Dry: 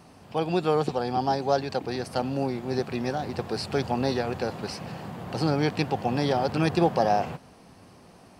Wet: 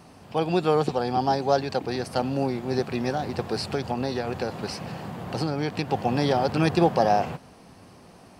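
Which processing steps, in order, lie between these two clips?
0:03.57–0:05.90: downward compressor, threshold −25 dBFS, peak gain reduction 6 dB
level +2 dB

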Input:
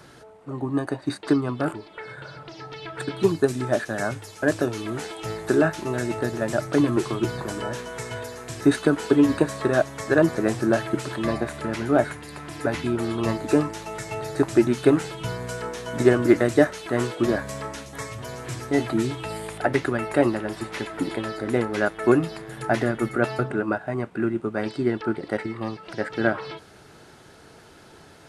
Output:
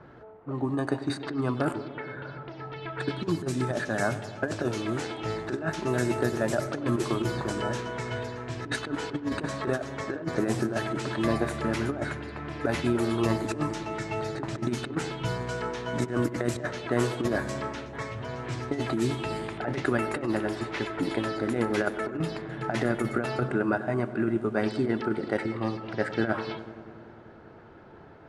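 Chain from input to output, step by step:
compressor whose output falls as the input rises −23 dBFS, ratio −0.5
feedback echo with a low-pass in the loop 97 ms, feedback 81%, low-pass 2,100 Hz, level −14 dB
low-pass that shuts in the quiet parts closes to 1,300 Hz, open at −20 dBFS
level −3 dB

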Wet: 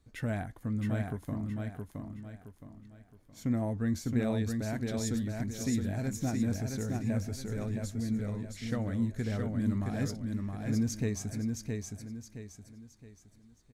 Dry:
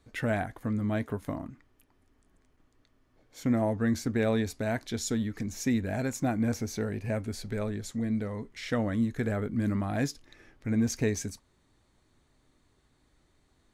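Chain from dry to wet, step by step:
bass and treble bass +8 dB, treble +5 dB
on a send: repeating echo 668 ms, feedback 36%, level −4 dB
on the sum: level −8.5 dB

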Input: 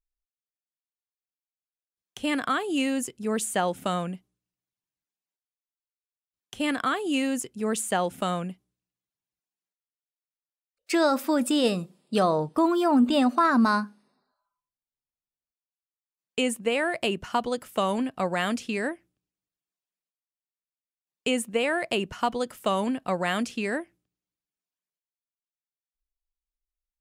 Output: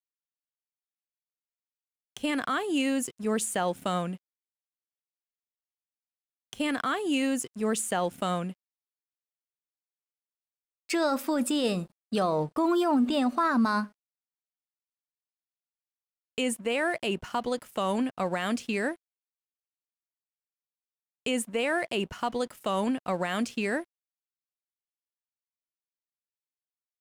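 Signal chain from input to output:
pitch vibrato 1.1 Hz 6.9 cents
brickwall limiter −18 dBFS, peak gain reduction 6 dB
dead-zone distortion −53 dBFS

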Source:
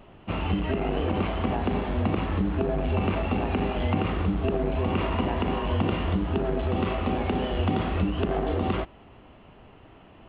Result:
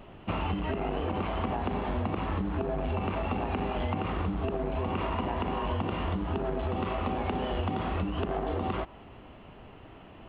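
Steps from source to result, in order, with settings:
dynamic equaliser 960 Hz, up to +5 dB, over −44 dBFS, Q 1.3
downward compressor, threshold −29 dBFS, peak gain reduction 10.5 dB
level +1.5 dB

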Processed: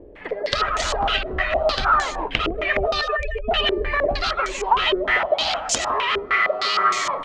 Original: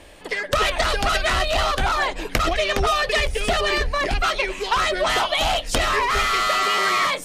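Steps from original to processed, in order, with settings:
0:03.01–0:03.51: expanding power law on the bin magnitudes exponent 2.7
0:05.10–0:06.73: high-pass filter 190 Hz 6 dB per octave
downward compressor, threshold −23 dBFS, peak gain reduction 7.5 dB
single-tap delay 154 ms −7.5 dB
low-pass on a step sequencer 6.5 Hz 410–6,800 Hz

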